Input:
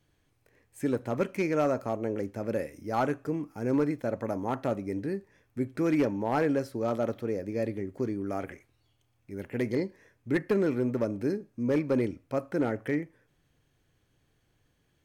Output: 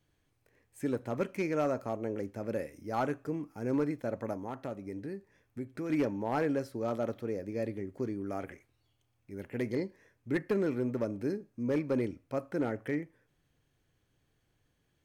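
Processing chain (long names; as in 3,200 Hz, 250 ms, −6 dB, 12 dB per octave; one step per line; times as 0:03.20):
0:04.33–0:05.90: downward compressor 2 to 1, threshold −35 dBFS, peak gain reduction 7 dB
level −4 dB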